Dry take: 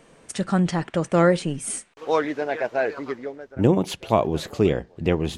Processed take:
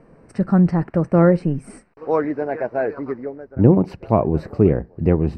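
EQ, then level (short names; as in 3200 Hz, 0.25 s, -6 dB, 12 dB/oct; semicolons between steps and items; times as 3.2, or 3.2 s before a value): running mean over 13 samples; low shelf 350 Hz +8.5 dB; 0.0 dB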